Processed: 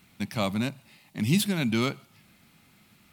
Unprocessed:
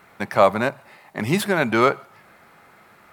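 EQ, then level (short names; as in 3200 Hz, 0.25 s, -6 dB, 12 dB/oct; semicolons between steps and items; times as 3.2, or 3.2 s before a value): band shelf 850 Hz -16 dB 2.7 oct; 0.0 dB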